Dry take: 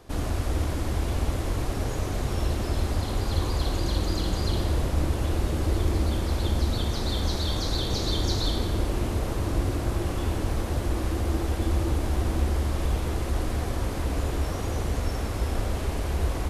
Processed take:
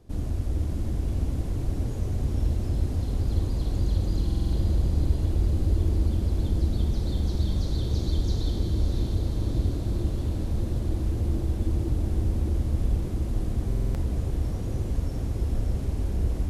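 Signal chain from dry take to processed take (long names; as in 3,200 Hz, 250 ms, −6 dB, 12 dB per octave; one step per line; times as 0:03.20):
drawn EQ curve 190 Hz 0 dB, 1,200 Hz −16 dB, 6,400 Hz −11 dB
feedback delay with all-pass diffusion 583 ms, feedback 66%, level −6 dB
buffer that repeats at 0:04.25/0:13.67, samples 2,048, times 5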